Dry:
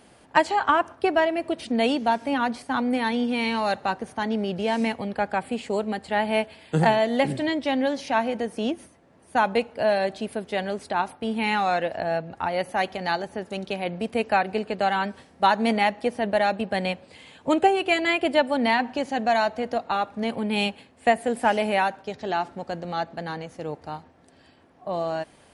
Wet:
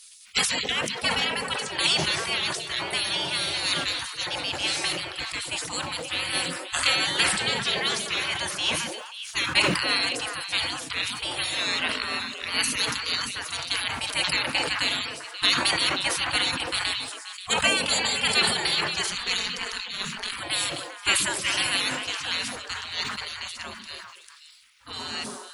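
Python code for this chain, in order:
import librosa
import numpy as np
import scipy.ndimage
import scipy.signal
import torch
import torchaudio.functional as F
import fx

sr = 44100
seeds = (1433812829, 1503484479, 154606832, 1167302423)

y = fx.peak_eq(x, sr, hz=390.0, db=13.5, octaves=2.4)
y = fx.ring_mod(y, sr, carrier_hz=92.0, at=(19.09, 20.31))
y = fx.spec_gate(y, sr, threshold_db=-30, keep='weak')
y = fx.high_shelf(y, sr, hz=2500.0, db=12.0)
y = fx.echo_stepped(y, sr, ms=133, hz=180.0, octaves=1.4, feedback_pct=70, wet_db=-2.0)
y = fx.sustainer(y, sr, db_per_s=46.0)
y = y * librosa.db_to_amplitude(5.0)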